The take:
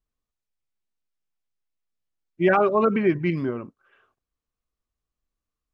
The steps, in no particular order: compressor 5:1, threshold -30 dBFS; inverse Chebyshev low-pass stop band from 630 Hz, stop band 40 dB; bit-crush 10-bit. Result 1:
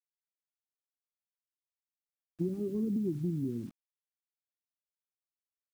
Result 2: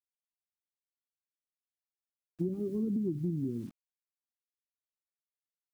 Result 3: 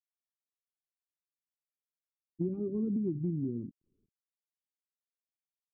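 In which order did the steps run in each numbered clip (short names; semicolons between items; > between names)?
inverse Chebyshev low-pass > compressor > bit-crush; inverse Chebyshev low-pass > bit-crush > compressor; bit-crush > inverse Chebyshev low-pass > compressor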